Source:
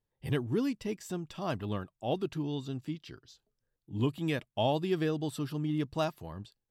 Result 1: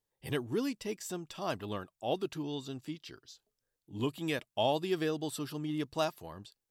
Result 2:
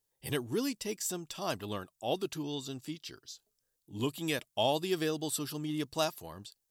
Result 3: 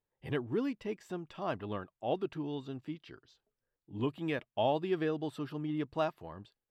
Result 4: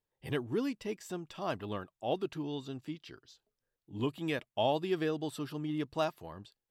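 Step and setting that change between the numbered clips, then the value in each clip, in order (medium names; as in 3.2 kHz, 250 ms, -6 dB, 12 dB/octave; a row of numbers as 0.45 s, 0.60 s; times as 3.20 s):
tone controls, treble: +5 dB, +14 dB, -15 dB, -3 dB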